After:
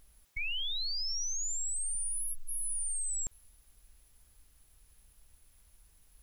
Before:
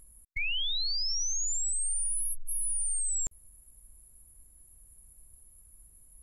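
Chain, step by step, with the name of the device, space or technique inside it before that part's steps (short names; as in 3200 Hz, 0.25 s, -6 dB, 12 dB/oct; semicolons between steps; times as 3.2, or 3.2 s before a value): plain cassette with noise reduction switched in (mismatched tape noise reduction decoder only; wow and flutter 20 cents; white noise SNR 34 dB); 1.95–2.55 elliptic band-stop 270–1000 Hz; gain -4 dB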